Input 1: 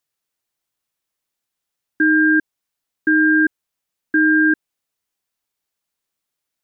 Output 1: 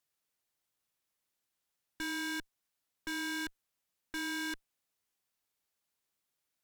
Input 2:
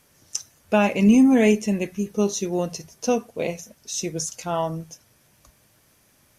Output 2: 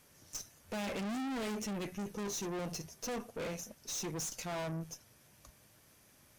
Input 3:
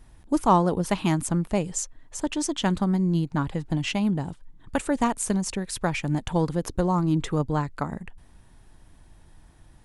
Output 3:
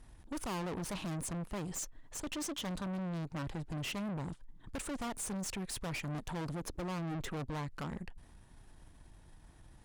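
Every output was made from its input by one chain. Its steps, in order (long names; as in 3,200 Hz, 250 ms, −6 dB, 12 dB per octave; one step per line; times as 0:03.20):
tube saturation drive 35 dB, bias 0.55
level −1.5 dB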